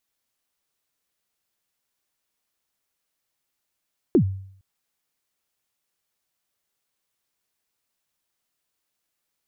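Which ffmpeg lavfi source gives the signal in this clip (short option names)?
-f lavfi -i "aevalsrc='0.299*pow(10,-3*t/0.62)*sin(2*PI*(410*0.086/log(96/410)*(exp(log(96/410)*min(t,0.086)/0.086)-1)+96*max(t-0.086,0)))':d=0.46:s=44100"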